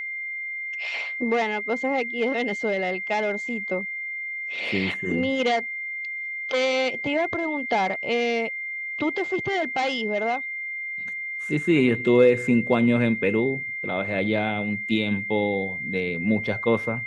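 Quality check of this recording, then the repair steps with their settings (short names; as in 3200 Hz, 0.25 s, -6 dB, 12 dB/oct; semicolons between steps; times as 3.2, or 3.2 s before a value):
tone 2100 Hz -29 dBFS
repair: notch 2100 Hz, Q 30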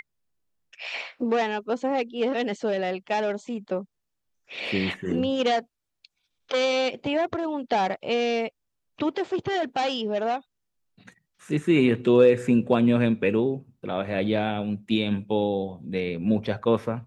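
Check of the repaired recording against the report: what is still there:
none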